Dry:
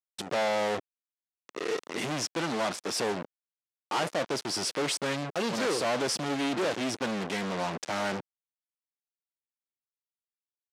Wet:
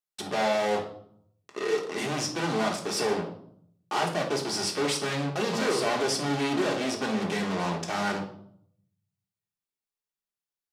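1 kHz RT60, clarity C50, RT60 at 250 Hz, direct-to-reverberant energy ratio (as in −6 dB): 0.60 s, 8.0 dB, 0.90 s, 0.5 dB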